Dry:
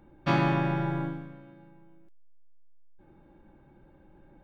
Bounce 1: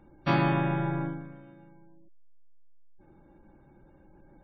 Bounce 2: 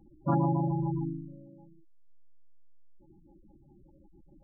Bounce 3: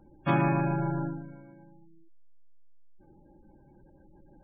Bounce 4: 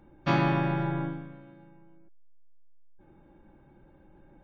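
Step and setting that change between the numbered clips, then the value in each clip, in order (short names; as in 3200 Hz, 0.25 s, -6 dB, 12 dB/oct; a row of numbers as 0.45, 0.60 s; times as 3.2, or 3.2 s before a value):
spectral gate, under each frame's peak: -35, -10, -20, -50 dB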